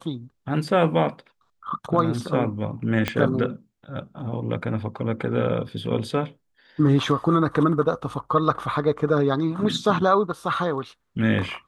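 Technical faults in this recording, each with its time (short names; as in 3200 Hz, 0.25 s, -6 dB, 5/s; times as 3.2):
3.08 pop -9 dBFS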